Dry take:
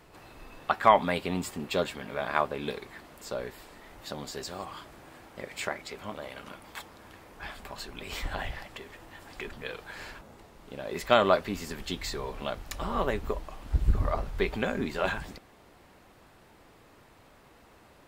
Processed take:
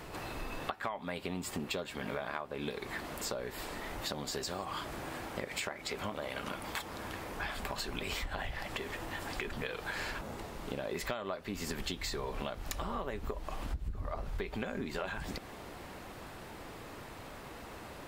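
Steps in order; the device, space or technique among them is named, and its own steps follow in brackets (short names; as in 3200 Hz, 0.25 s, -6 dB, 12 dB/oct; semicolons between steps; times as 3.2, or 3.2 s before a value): serial compression, peaks first (compressor 6:1, threshold -38 dBFS, peak gain reduction 22.5 dB; compressor 2.5:1, threshold -46 dBFS, peak gain reduction 9 dB); gain +9.5 dB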